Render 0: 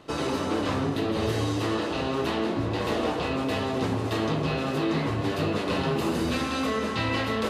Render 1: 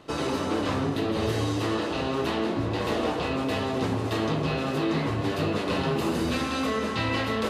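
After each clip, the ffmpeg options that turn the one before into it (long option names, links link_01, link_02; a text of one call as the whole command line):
ffmpeg -i in.wav -af anull out.wav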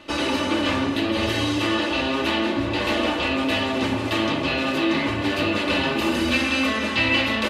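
ffmpeg -i in.wav -af "equalizer=frequency=2600:width_type=o:width=1.3:gain=9,aecho=1:1:3.4:0.62,volume=1.5dB" out.wav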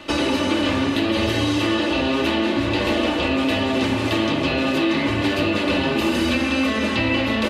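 ffmpeg -i in.wav -filter_complex "[0:a]acrossover=split=700|1600[link_01][link_02][link_03];[link_01]acompressor=threshold=-25dB:ratio=4[link_04];[link_02]acompressor=threshold=-40dB:ratio=4[link_05];[link_03]acompressor=threshold=-33dB:ratio=4[link_06];[link_04][link_05][link_06]amix=inputs=3:normalize=0,volume=6.5dB" out.wav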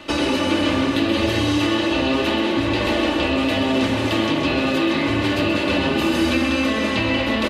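ffmpeg -i in.wav -af "aecho=1:1:129|258|387|516|645|774:0.376|0.192|0.0978|0.0499|0.0254|0.013" out.wav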